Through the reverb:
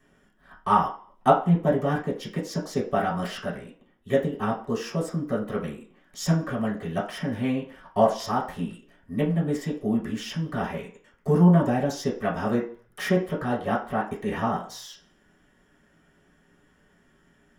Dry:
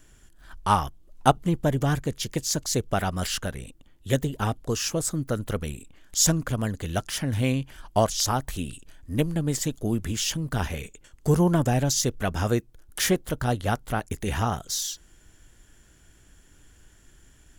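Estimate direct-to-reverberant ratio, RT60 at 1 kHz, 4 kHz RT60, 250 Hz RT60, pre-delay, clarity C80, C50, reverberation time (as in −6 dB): −6.5 dB, 0.50 s, 0.50 s, 0.40 s, 3 ms, 13.0 dB, 8.5 dB, 0.50 s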